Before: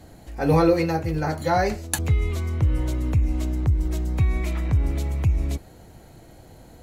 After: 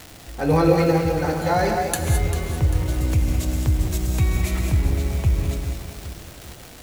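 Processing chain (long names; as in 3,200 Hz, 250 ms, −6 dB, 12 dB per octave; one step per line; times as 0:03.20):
0:02.94–0:04.59: high-shelf EQ 3,700 Hz +12 dB
surface crackle 390 per second −29 dBFS
reverb whose tail is shaped and stops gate 240 ms rising, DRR 3 dB
feedback echo at a low word length 395 ms, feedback 55%, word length 6 bits, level −10.5 dB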